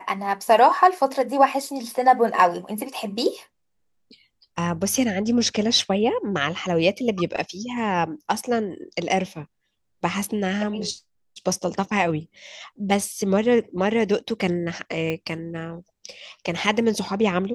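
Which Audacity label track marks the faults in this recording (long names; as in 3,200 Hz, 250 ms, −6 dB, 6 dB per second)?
15.100000	15.100000	click −14 dBFS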